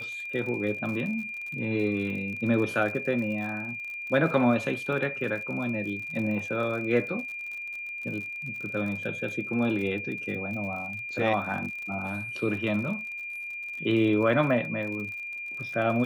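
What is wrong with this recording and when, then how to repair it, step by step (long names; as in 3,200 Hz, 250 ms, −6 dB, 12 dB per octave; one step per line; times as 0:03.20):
surface crackle 47 per second −36 dBFS
whistle 2,400 Hz −34 dBFS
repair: click removal
notch filter 2,400 Hz, Q 30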